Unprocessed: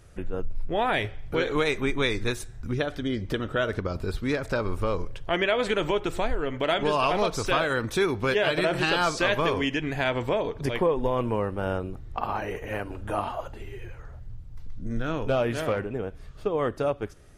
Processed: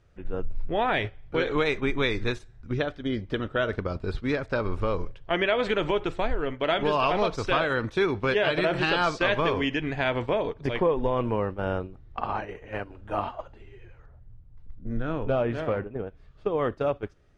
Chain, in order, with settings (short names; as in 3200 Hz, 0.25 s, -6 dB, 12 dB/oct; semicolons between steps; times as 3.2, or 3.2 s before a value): LPF 4400 Hz 12 dB/oct; gate -30 dBFS, range -9 dB; 14.06–16.07 high shelf 2400 Hz -10 dB